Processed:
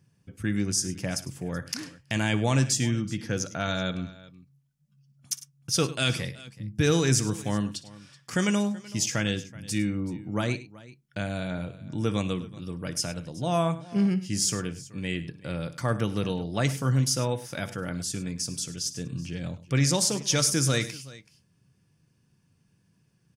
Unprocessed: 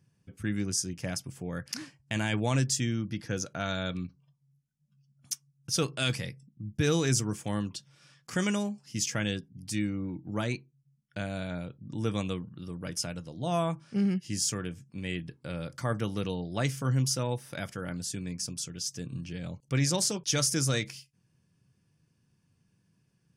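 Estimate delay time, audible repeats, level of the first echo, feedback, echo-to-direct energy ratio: 59 ms, 3, -17.5 dB, no regular repeats, -13.0 dB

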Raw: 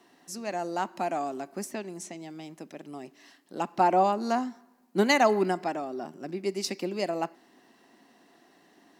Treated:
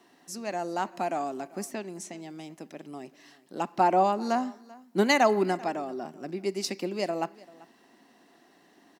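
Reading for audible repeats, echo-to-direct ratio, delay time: 1, -22.0 dB, 389 ms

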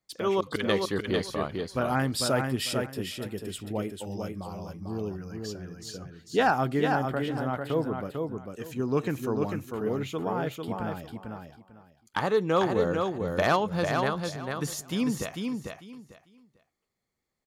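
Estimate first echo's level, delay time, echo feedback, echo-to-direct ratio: -4.5 dB, 447 ms, 21%, -4.5 dB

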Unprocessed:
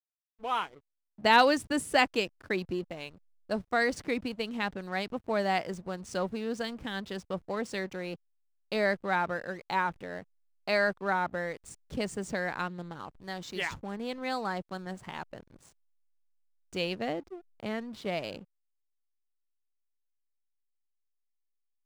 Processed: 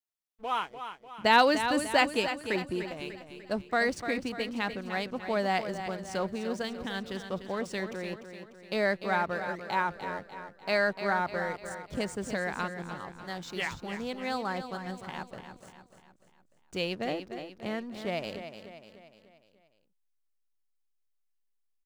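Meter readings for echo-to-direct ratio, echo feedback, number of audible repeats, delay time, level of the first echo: -8.5 dB, 49%, 5, 297 ms, -9.5 dB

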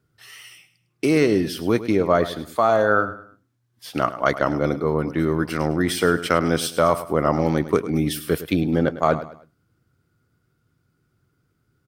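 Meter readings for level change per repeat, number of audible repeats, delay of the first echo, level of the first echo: -9.5 dB, 3, 104 ms, -14.0 dB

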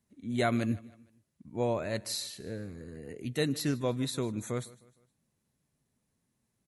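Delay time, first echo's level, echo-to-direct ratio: 154 ms, -21.0 dB, -20.0 dB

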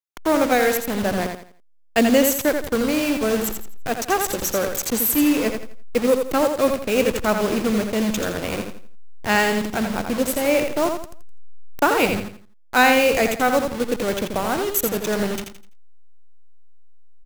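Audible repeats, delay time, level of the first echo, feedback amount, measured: 3, 84 ms, -6.0 dB, 31%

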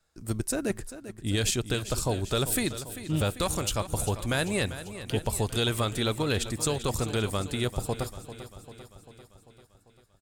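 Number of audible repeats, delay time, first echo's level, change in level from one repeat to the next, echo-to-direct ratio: 5, 394 ms, -13.0 dB, -4.5 dB, -11.0 dB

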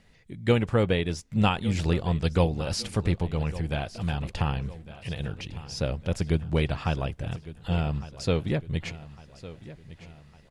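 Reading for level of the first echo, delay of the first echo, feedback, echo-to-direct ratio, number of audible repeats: -16.5 dB, 1156 ms, 46%, -15.5 dB, 3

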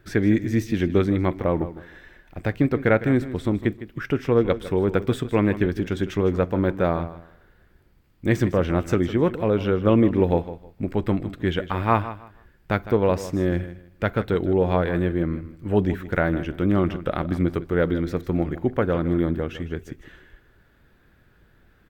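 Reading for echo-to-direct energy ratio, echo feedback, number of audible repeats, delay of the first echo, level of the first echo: -13.5 dB, 23%, 2, 156 ms, -14.0 dB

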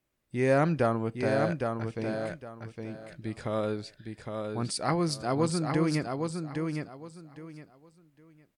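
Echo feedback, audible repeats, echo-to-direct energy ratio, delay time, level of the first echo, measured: 23%, 3, -5.0 dB, 811 ms, -5.0 dB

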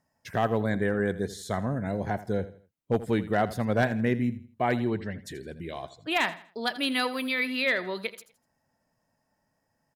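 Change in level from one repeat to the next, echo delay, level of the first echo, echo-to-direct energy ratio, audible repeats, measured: -9.5 dB, 82 ms, -15.5 dB, -15.0 dB, 3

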